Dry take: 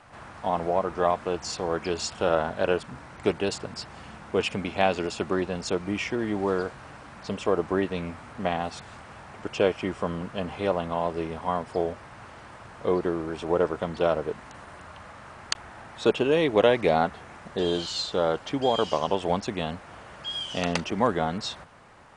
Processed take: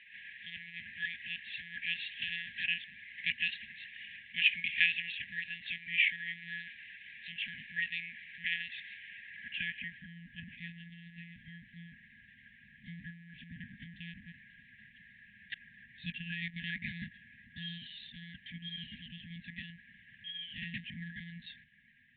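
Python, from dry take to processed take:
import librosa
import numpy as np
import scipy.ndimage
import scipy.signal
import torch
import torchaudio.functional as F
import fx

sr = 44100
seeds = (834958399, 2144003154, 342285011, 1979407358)

y = fx.lpc_monotone(x, sr, seeds[0], pitch_hz=170.0, order=16)
y = fx.brickwall_bandstop(y, sr, low_hz=250.0, high_hz=1600.0)
y = fx.filter_sweep_bandpass(y, sr, from_hz=2300.0, to_hz=810.0, start_s=9.06, end_s=10.31, q=1.7)
y = y * 10.0 ** (6.0 / 20.0)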